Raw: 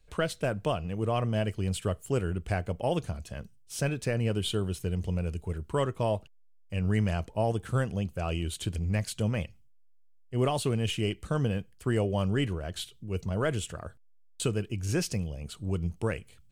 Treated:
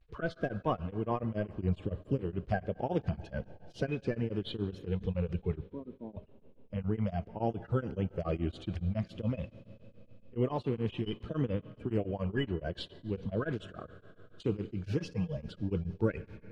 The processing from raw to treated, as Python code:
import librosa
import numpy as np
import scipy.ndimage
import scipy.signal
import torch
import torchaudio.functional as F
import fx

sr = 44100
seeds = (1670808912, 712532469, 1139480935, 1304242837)

y = fx.spec_quant(x, sr, step_db=30)
y = fx.low_shelf(y, sr, hz=330.0, db=8.0, at=(1.53, 2.18))
y = fx.comb(y, sr, ms=6.6, depth=0.77, at=(14.82, 15.37))
y = fx.rider(y, sr, range_db=5, speed_s=0.5)
y = fx.ladder_bandpass(y, sr, hz=280.0, resonance_pct=50, at=(5.62, 6.16))
y = fx.vibrato(y, sr, rate_hz=0.47, depth_cents=50.0)
y = fx.air_absorb(y, sr, metres=270.0)
y = fx.rev_schroeder(y, sr, rt60_s=3.8, comb_ms=31, drr_db=16.0)
y = y * np.abs(np.cos(np.pi * 7.1 * np.arange(len(y)) / sr))